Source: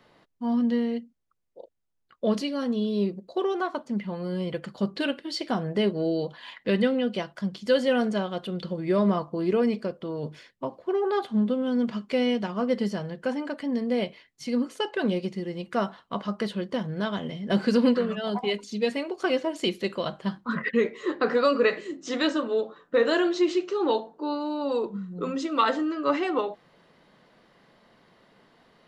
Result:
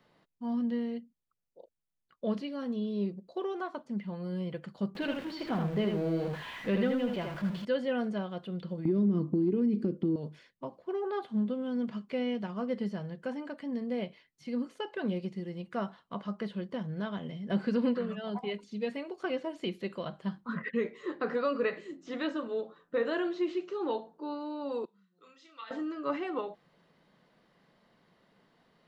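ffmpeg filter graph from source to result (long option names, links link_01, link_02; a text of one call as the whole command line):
ffmpeg -i in.wav -filter_complex "[0:a]asettb=1/sr,asplit=3[link_01][link_02][link_03];[link_01]atrim=end=4.954[link_04];[link_02]atrim=start=4.95:end=7.65,asetpts=PTS-STARTPTS,afade=type=in:duration=0.004:curve=qsin,afade=type=out:start_time=2.696:duration=0.004:curve=qsin,aeval=exprs='val(0)+0.5*0.0299*sgn(val(0))':channel_layout=same,aecho=1:1:79:0.562,atrim=end_sample=119070[link_05];[link_03]atrim=start=7.646[link_06];[link_04][link_05]acrossfade=duration=0.004:curve1=hsin:curve2=qsin[link_07];[link_07][link_06]acrossfade=duration=0.004:curve1=qsin:curve2=hsin,asettb=1/sr,asplit=3[link_08][link_09][link_10];[link_08]atrim=end=8.854[link_11];[link_09]atrim=start=8.85:end=10.16,asetpts=PTS-STARTPTS,afade=type=in:duration=0.004:curve=qsin,afade=type=out:start_time=1.306:duration=0.004:curve=qsin,lowshelf=frequency=480:width_type=q:width=3:gain=13,acompressor=threshold=-18dB:ratio=6:attack=3.2:release=140:knee=1:detection=peak,highpass=60[link_12];[link_10]atrim=start=10.156[link_13];[link_11][link_12]acrossfade=duration=0.004:curve1=hsin:curve2=qsin[link_14];[link_14][link_13]acrossfade=duration=0.004:curve1=qsin:curve2=hsin,asettb=1/sr,asplit=3[link_15][link_16][link_17];[link_15]atrim=end=24.854[link_18];[link_16]atrim=start=24.85:end=25.71,asetpts=PTS-STARTPTS,afade=type=in:duration=0.004:curve=qsin,afade=type=out:start_time=0.856:duration=0.004:curve=qsin,lowpass=4300,aderivative,asplit=2[link_19][link_20];[link_20]adelay=31,volume=-5.5dB[link_21];[link_19][link_21]amix=inputs=2:normalize=0,atrim=end_sample=37926[link_22];[link_17]atrim=start=25.706[link_23];[link_18][link_22]acrossfade=duration=0.004:curve1=hsin:curve2=qsin[link_24];[link_24][link_23]acrossfade=duration=0.004:curve1=qsin:curve2=hsin,equalizer=frequency=170:width_type=o:width=0.58:gain=5,acrossover=split=3500[link_25][link_26];[link_26]acompressor=threshold=-55dB:ratio=4:attack=1:release=60[link_27];[link_25][link_27]amix=inputs=2:normalize=0,volume=-8.5dB" out.wav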